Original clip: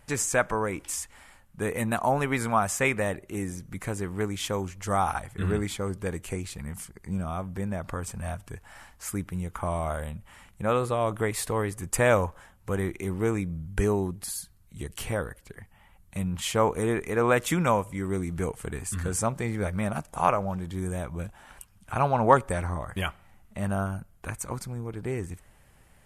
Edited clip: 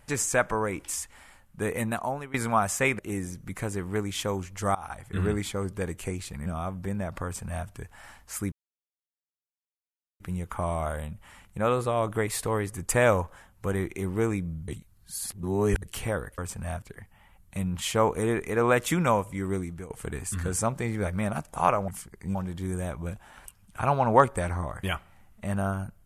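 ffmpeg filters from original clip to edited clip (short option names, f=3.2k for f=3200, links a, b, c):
-filter_complex "[0:a]asplit=13[a][b][c][d][e][f][g][h][i][j][k][l][m];[a]atrim=end=2.34,asetpts=PTS-STARTPTS,afade=t=out:st=1.77:d=0.57:silence=0.0944061[n];[b]atrim=start=2.34:end=2.992,asetpts=PTS-STARTPTS,afade=t=in:d=0.004:c=hsin:silence=0.0944061[o];[c]atrim=start=3.238:end=5,asetpts=PTS-STARTPTS,afade=t=out:st=1.758:d=0.004:c=hsin:silence=0.0794328[p];[d]atrim=start=5:end=6.712,asetpts=PTS-STARTPTS,afade=t=in:d=0.4:silence=0.0794328[q];[e]atrim=start=7.178:end=9.24,asetpts=PTS-STARTPTS,afade=t=out:st=2.058:d=0.004:c=hsin,apad=pad_dur=1.68[r];[f]atrim=start=9.24:end=13.722,asetpts=PTS-STARTPTS,afade=t=in:d=0.004:c=hsin[s];[g]atrim=start=13.718:end=14.862,asetpts=PTS-STARTPTS,areverse[t];[h]atrim=start=14.858:end=15.422[u];[i]atrim=start=7.958:end=8.402[v];[j]atrim=start=15.418:end=18.5,asetpts=PTS-STARTPTS,afade=t=out:st=2.712:d=0.37:silence=0.125893[w];[k]atrim=start=18.5:end=20.482,asetpts=PTS-STARTPTS,afade=t=in:d=0.004:c=hsin:silence=0.125893[x];[l]atrim=start=6.708:end=7.182[y];[m]atrim=start=20.478[z];[n][o]concat=n=2:v=0:a=1[aa];[p][q]concat=n=2:v=0:a=1[ab];[aa][ab]acrossfade=d=0.004:c1=hsin:c2=hsin[ac];[r][s]concat=n=2:v=0:a=1[ad];[ac][ad]acrossfade=d=0.004:c1=hsin:c2=hsin[ae];[ae][t]acrossfade=d=0.004:c1=hsin:c2=hsin[af];[af][u]acrossfade=d=0.004:c1=hsin:c2=hsin[ag];[ag][v]acrossfade=d=0.004:c1=hsin:c2=hsin[ah];[w][x]concat=n=2:v=0:a=1[ai];[ah][ai]acrossfade=d=0.004:c1=hsin:c2=hsin[aj];[aj][y]acrossfade=d=0.004:c1=hsin:c2=hsin[ak];[ak][z]acrossfade=d=0.004:c1=hsin:c2=hsin"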